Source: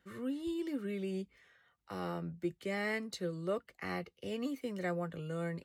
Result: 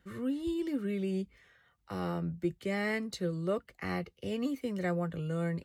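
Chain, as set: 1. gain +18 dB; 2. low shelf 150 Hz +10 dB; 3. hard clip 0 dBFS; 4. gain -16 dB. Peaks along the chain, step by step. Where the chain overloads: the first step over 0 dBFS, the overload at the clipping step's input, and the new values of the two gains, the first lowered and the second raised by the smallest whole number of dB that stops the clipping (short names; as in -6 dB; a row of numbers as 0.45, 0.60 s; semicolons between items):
-6.0, -4.0, -4.0, -20.0 dBFS; no overload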